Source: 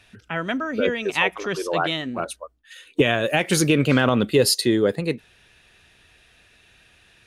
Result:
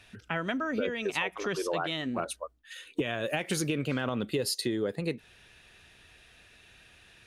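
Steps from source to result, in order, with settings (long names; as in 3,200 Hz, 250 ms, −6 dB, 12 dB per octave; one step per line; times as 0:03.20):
downward compressor 6 to 1, threshold −26 dBFS, peak gain reduction 13.5 dB
level −1.5 dB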